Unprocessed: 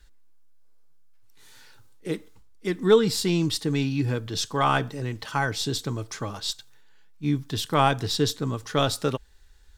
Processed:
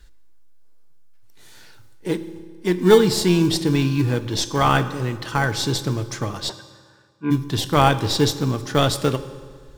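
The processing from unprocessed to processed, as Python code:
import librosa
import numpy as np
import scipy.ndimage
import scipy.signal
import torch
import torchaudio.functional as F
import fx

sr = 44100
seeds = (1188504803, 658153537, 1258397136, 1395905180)

p1 = fx.sample_hold(x, sr, seeds[0], rate_hz=1300.0, jitter_pct=0)
p2 = x + (p1 * 10.0 ** (-11.5 / 20.0))
p3 = fx.cabinet(p2, sr, low_hz=260.0, low_slope=12, high_hz=2300.0, hz=(430.0, 920.0, 1500.0, 2100.0), db=(6, 7, 9, -5), at=(6.48, 7.3), fade=0.02)
p4 = fx.rev_fdn(p3, sr, rt60_s=1.8, lf_ratio=1.0, hf_ratio=0.75, size_ms=17.0, drr_db=11.5)
y = p4 * 10.0 ** (4.0 / 20.0)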